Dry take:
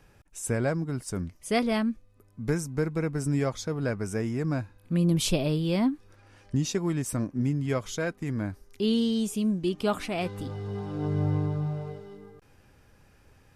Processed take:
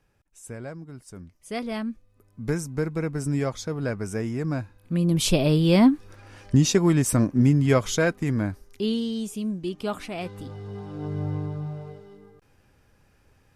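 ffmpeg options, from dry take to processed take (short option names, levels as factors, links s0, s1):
-af "volume=2.66,afade=t=in:st=1.26:d=1.25:silence=0.281838,afade=t=in:st=5.07:d=0.7:silence=0.421697,afade=t=out:st=7.95:d=1.06:silence=0.281838"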